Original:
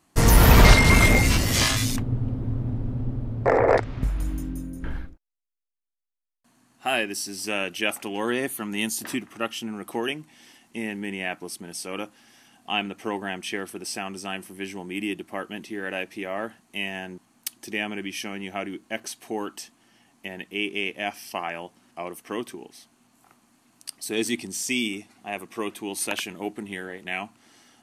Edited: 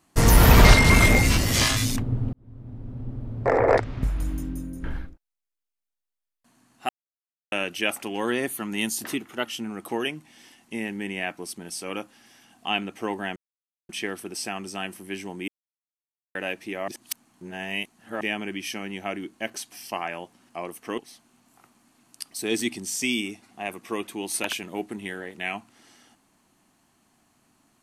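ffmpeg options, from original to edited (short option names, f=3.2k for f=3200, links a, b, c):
-filter_complex "[0:a]asplit=13[a][b][c][d][e][f][g][h][i][j][k][l][m];[a]atrim=end=2.33,asetpts=PTS-STARTPTS,afade=t=out:st=2.326:d=0.004:c=hsin[n];[b]atrim=start=2.33:end=6.89,asetpts=PTS-STARTPTS,afade=t=in:d=1.41,afade=t=out:st=4.556:d=0.004:c=hsin[o];[c]atrim=start=6.89:end=7.52,asetpts=PTS-STARTPTS,volume=0[p];[d]atrim=start=7.52:end=9.084,asetpts=PTS-STARTPTS,afade=t=in:d=0.004:c=hsin[q];[e]atrim=start=9.08:end=9.48,asetpts=PTS-STARTPTS,asetrate=47628,aresample=44100,atrim=end_sample=16333,asetpts=PTS-STARTPTS[r];[f]atrim=start=9.476:end=13.39,asetpts=PTS-STARTPTS,afade=t=out:st=3.91:d=0.004:c=hsin,apad=pad_dur=0.53[s];[g]atrim=start=13.39:end=14.98,asetpts=PTS-STARTPTS,afade=t=in:d=0.004:c=hsin,afade=t=out:st=1.586:d=0.004:c=hsin[t];[h]atrim=start=14.98:end=15.85,asetpts=PTS-STARTPTS,volume=0[u];[i]atrim=start=15.85:end=16.382,asetpts=PTS-STARTPTS,afade=t=in:d=0.004:c=hsin[v];[j]atrim=start=16.378:end=17.712,asetpts=PTS-STARTPTS,areverse[w];[k]atrim=start=17.708:end=19.222[x];[l]atrim=start=21.138:end=22.402[y];[m]atrim=start=22.648[z];[n][o][p][q]concat=n=4:v=0:a=1[aa];[aa][r]acrossfade=d=0.004:c1=hsin:c2=hsin[ab];[s][t][u][v]concat=n=4:v=0:a=1[ac];[ab][ac]acrossfade=d=0.004:c1=hsin:c2=hsin[ad];[ad][w]acrossfade=d=0.004:c1=hsin:c2=hsin[ae];[ae][x]acrossfade=d=0.004:c1=hsin:c2=hsin[af];[af][y]acrossfade=d=0.004:c1=hsin:c2=hsin[ag];[ag][z]acrossfade=d=0.004:c1=hsin:c2=hsin"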